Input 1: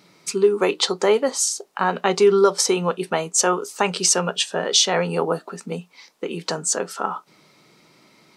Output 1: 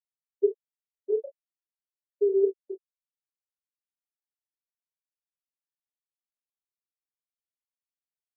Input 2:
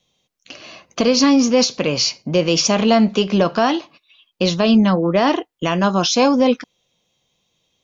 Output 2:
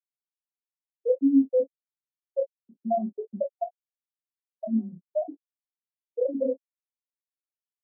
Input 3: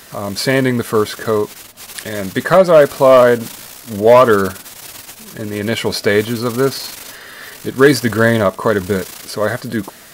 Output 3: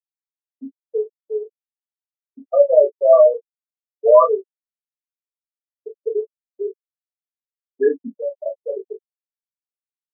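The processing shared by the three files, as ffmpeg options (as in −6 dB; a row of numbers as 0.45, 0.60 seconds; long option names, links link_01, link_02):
-filter_complex "[0:a]afftfilt=real='re*gte(hypot(re,im),2)':imag='im*gte(hypot(re,im),2)':win_size=1024:overlap=0.75,afftdn=noise_reduction=15:noise_floor=-42,acrossover=split=290 2200:gain=0.0631 1 0.2[link_01][link_02][link_03];[link_01][link_02][link_03]amix=inputs=3:normalize=0,acrossover=split=500[link_04][link_05];[link_04]aeval=exprs='val(0)*(1-0.7/2+0.7/2*cos(2*PI*10*n/s))':channel_layout=same[link_06];[link_05]aeval=exprs='val(0)*(1-0.7/2-0.7/2*cos(2*PI*10*n/s))':channel_layout=same[link_07];[link_06][link_07]amix=inputs=2:normalize=0,asplit=2[link_08][link_09];[link_09]adelay=18,volume=-10dB[link_10];[link_08][link_10]amix=inputs=2:normalize=0,asplit=2[link_11][link_12];[link_12]aecho=0:1:26|37:0.631|0.188[link_13];[link_11][link_13]amix=inputs=2:normalize=0,volume=-1dB"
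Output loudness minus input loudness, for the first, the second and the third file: −7.5, −12.0, −3.5 LU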